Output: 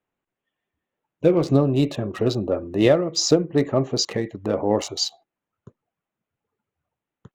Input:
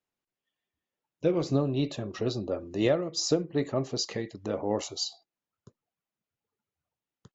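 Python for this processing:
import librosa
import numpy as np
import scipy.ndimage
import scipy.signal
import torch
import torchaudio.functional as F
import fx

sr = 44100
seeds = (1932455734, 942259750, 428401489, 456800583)

y = fx.wiener(x, sr, points=9)
y = y * 10.0 ** (8.5 / 20.0)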